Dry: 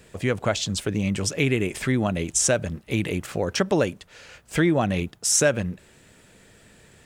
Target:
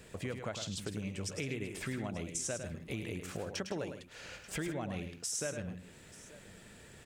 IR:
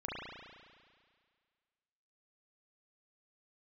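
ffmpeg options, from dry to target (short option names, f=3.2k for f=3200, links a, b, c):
-filter_complex "[0:a]acompressor=threshold=-38dB:ratio=3,asplit=2[a][b];[b]aecho=0:1:105|159|885:0.422|0.188|0.112[c];[a][c]amix=inputs=2:normalize=0,volume=-3dB"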